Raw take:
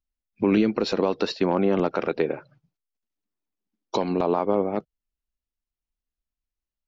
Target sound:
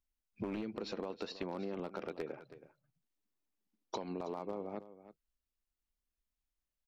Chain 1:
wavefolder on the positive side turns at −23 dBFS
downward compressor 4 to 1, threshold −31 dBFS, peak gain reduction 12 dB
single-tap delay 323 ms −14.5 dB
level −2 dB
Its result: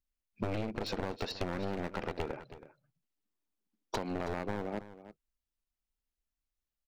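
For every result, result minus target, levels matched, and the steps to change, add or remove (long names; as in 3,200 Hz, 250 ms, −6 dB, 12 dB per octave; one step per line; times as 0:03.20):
wavefolder on the positive side: distortion +17 dB; downward compressor: peak gain reduction −6 dB
change: wavefolder on the positive side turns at −14 dBFS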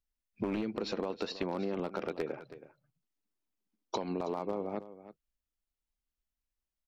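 downward compressor: peak gain reduction −5.5 dB
change: downward compressor 4 to 1, threshold −38.5 dBFS, peak gain reduction 18 dB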